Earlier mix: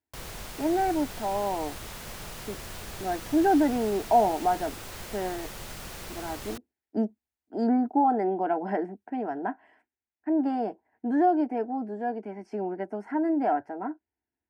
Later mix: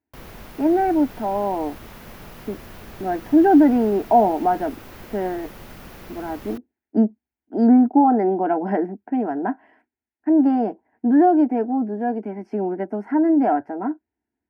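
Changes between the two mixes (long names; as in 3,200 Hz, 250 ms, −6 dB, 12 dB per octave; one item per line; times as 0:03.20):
speech +5.0 dB
master: add octave-band graphic EQ 250/4,000/8,000 Hz +6/−4/−11 dB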